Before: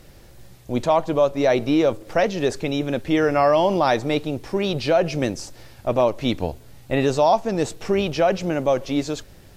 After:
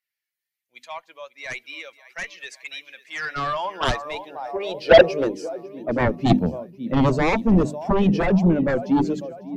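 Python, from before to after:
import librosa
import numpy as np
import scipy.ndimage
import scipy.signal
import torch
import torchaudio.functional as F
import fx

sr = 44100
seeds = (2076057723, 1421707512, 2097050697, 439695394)

y = fx.bin_expand(x, sr, power=1.5)
y = fx.hum_notches(y, sr, base_hz=50, count=6)
y = fx.echo_feedback(y, sr, ms=548, feedback_pct=59, wet_db=-17.5)
y = fx.filter_sweep_highpass(y, sr, from_hz=2000.0, to_hz=210.0, start_s=2.99, end_s=6.31, q=2.7)
y = fx.cheby_harmonics(y, sr, harmonics=(3, 7), levels_db=(-15, -10), full_scale_db=-4.0)
y = fx.tilt_eq(y, sr, slope=-3.0)
y = fx.band_widen(y, sr, depth_pct=40)
y = y * librosa.db_to_amplitude(-2.0)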